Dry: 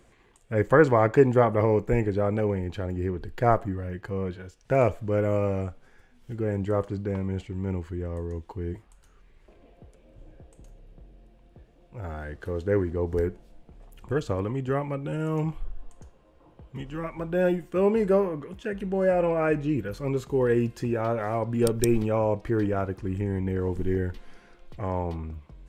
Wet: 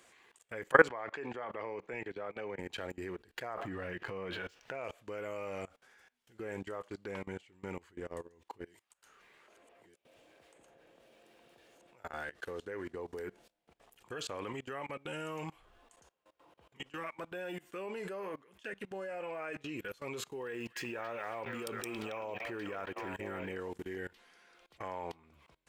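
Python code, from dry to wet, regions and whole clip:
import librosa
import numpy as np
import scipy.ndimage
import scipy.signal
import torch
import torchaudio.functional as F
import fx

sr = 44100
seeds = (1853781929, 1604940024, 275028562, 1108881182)

y = fx.chain(x, sr, fx.lowpass(hz=4300.0, slope=12),
    fx.low_shelf(hz=160.0, db=-6.5),
    fx.band_widen(depth_pct=40), at=(0.88, 2.59))
y = fx.chain(y, sr, fx.median_filter(points=5),
    fx.high_shelf(hz=5000.0, db=-11.0),
    fx.env_flatten(amount_pct=50), at=(3.54, 4.84))
y = fx.chain(y, sr, fx.reverse_delay(ms=642, wet_db=-4),
    fx.low_shelf(hz=120.0, db=-9.5),
    fx.band_squash(depth_pct=100), at=(8.66, 12.04))
y = fx.chain(y, sr, fx.echo_stepped(ms=275, hz=2600.0, octaves=-0.7, feedback_pct=70, wet_db=-4),
    fx.resample_linear(factor=2), at=(20.29, 23.55))
y = fx.highpass(y, sr, hz=1400.0, slope=6)
y = fx.dynamic_eq(y, sr, hz=2800.0, q=1.7, threshold_db=-54.0, ratio=4.0, max_db=4)
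y = fx.level_steps(y, sr, step_db=23)
y = y * librosa.db_to_amplitude(5.5)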